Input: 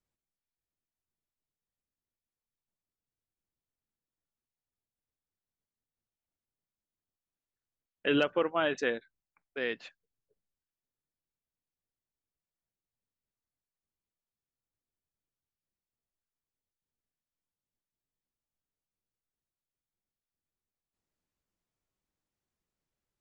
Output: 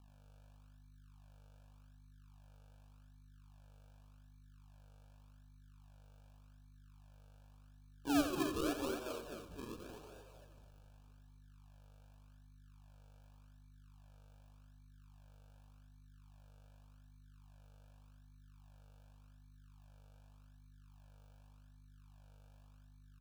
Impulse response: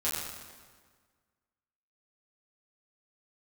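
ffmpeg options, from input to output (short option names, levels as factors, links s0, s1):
-filter_complex "[0:a]asplit=3[s0][s1][s2];[s0]bandpass=f=300:t=q:w=8,volume=1[s3];[s1]bandpass=f=870:t=q:w=8,volume=0.501[s4];[s2]bandpass=f=2240:t=q:w=8,volume=0.355[s5];[s3][s4][s5]amix=inputs=3:normalize=0,asplit=2[s6][s7];[s7]asplit=7[s8][s9][s10][s11][s12][s13][s14];[s8]adelay=228,afreqshift=86,volume=0.447[s15];[s9]adelay=456,afreqshift=172,volume=0.24[s16];[s10]adelay=684,afreqshift=258,volume=0.13[s17];[s11]adelay=912,afreqshift=344,volume=0.07[s18];[s12]adelay=1140,afreqshift=430,volume=0.038[s19];[s13]adelay=1368,afreqshift=516,volume=0.0204[s20];[s14]adelay=1596,afreqshift=602,volume=0.0111[s21];[s15][s16][s17][s18][s19][s20][s21]amix=inputs=7:normalize=0[s22];[s6][s22]amix=inputs=2:normalize=0,aeval=exprs='val(0)+0.000794*(sin(2*PI*50*n/s)+sin(2*PI*2*50*n/s)/2+sin(2*PI*3*50*n/s)/3+sin(2*PI*4*50*n/s)/4+sin(2*PI*5*50*n/s)/5)':c=same,acrusher=samples=42:mix=1:aa=0.000001:lfo=1:lforange=42:lforate=0.86,asplit=2[s23][s24];[1:a]atrim=start_sample=2205[s25];[s24][s25]afir=irnorm=-1:irlink=0,volume=0.0891[s26];[s23][s26]amix=inputs=2:normalize=0,asoftclip=type=tanh:threshold=0.0376,asuperstop=centerf=2000:order=20:qfactor=3.8,aecho=1:1:87.46|262.4:0.398|0.355,volume=1.19"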